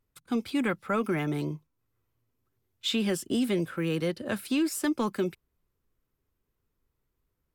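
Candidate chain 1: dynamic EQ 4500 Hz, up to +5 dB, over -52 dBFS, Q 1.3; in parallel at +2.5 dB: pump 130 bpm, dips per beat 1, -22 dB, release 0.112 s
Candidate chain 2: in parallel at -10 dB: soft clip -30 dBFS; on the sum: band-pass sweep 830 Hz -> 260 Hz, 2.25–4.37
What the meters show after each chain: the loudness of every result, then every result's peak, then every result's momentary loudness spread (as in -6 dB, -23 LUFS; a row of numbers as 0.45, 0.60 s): -22.0, -34.0 LUFS; -8.5, -20.5 dBFS; 6, 13 LU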